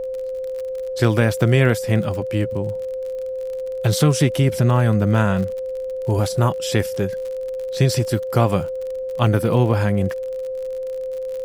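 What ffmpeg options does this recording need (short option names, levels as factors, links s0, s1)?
-af "adeclick=t=4,bandreject=f=520:w=30,agate=range=0.0891:threshold=0.112"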